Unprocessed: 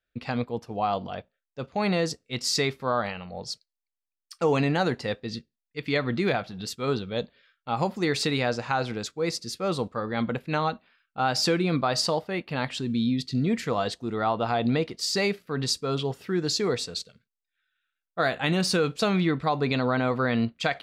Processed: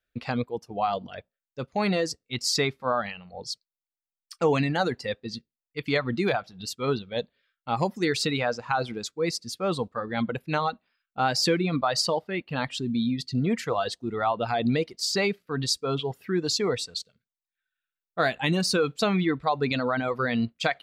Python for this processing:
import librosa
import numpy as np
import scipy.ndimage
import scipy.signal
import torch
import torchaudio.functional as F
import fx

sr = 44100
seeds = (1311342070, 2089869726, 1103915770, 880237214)

y = fx.dereverb_blind(x, sr, rt60_s=1.6)
y = F.gain(torch.from_numpy(y), 1.0).numpy()